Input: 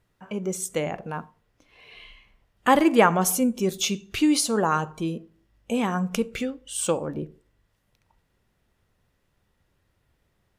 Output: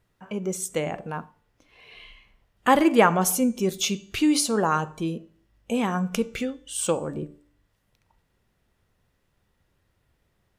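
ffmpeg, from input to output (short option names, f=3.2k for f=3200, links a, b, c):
-af "bandreject=f=292.9:t=h:w=4,bandreject=f=585.8:t=h:w=4,bandreject=f=878.7:t=h:w=4,bandreject=f=1.1716k:t=h:w=4,bandreject=f=1.4645k:t=h:w=4,bandreject=f=1.7574k:t=h:w=4,bandreject=f=2.0503k:t=h:w=4,bandreject=f=2.3432k:t=h:w=4,bandreject=f=2.6361k:t=h:w=4,bandreject=f=2.929k:t=h:w=4,bandreject=f=3.2219k:t=h:w=4,bandreject=f=3.5148k:t=h:w=4,bandreject=f=3.8077k:t=h:w=4,bandreject=f=4.1006k:t=h:w=4,bandreject=f=4.3935k:t=h:w=4,bandreject=f=4.6864k:t=h:w=4,bandreject=f=4.9793k:t=h:w=4,bandreject=f=5.2722k:t=h:w=4,bandreject=f=5.5651k:t=h:w=4,bandreject=f=5.858k:t=h:w=4,bandreject=f=6.1509k:t=h:w=4,bandreject=f=6.4438k:t=h:w=4,bandreject=f=6.7367k:t=h:w=4,bandreject=f=7.0296k:t=h:w=4,bandreject=f=7.3225k:t=h:w=4,bandreject=f=7.6154k:t=h:w=4,bandreject=f=7.9083k:t=h:w=4,bandreject=f=8.2012k:t=h:w=4,bandreject=f=8.4941k:t=h:w=4,bandreject=f=8.787k:t=h:w=4"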